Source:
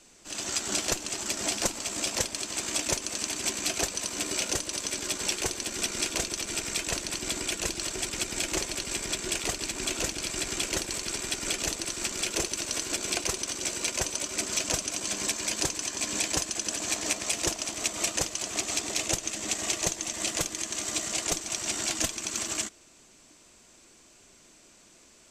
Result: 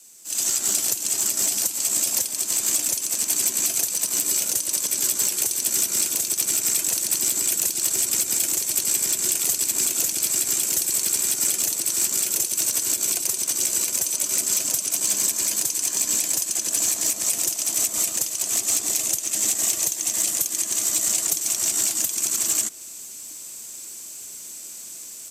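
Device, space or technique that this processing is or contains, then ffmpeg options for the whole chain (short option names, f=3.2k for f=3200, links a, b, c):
FM broadcast chain: -filter_complex "[0:a]highpass=69,dynaudnorm=f=320:g=3:m=11.5dB,acrossover=split=82|210|1800|3800[a][b][c][d][e];[a]acompressor=threshold=-56dB:ratio=4[f];[b]acompressor=threshold=-38dB:ratio=4[g];[c]acompressor=threshold=-30dB:ratio=4[h];[d]acompressor=threshold=-36dB:ratio=4[i];[e]acompressor=threshold=-28dB:ratio=4[j];[f][g][h][i][j]amix=inputs=5:normalize=0,aemphasis=mode=production:type=50fm,alimiter=limit=-10.5dB:level=0:latency=1:release=82,asoftclip=type=hard:threshold=-14dB,lowpass=f=15k:w=0.5412,lowpass=f=15k:w=1.3066,aemphasis=mode=production:type=50fm,volume=-7dB"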